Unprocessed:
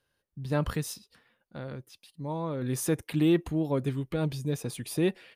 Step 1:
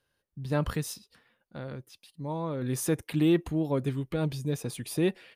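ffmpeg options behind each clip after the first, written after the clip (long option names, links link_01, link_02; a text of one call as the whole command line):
ffmpeg -i in.wav -af anull out.wav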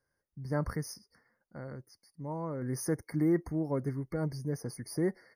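ffmpeg -i in.wav -af "afftfilt=real='re*eq(mod(floor(b*sr/1024/2200),2),0)':imag='im*eq(mod(floor(b*sr/1024/2200),2),0)':win_size=1024:overlap=0.75,volume=-4dB" out.wav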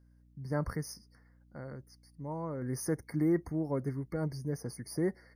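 ffmpeg -i in.wav -af "aeval=exprs='val(0)+0.001*(sin(2*PI*60*n/s)+sin(2*PI*2*60*n/s)/2+sin(2*PI*3*60*n/s)/3+sin(2*PI*4*60*n/s)/4+sin(2*PI*5*60*n/s)/5)':channel_layout=same,volume=-1dB" out.wav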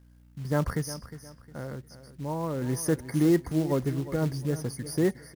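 ffmpeg -i in.wav -af "acrusher=bits=5:mode=log:mix=0:aa=0.000001,aecho=1:1:358|716|1074:0.2|0.0638|0.0204,volume=6.5dB" out.wav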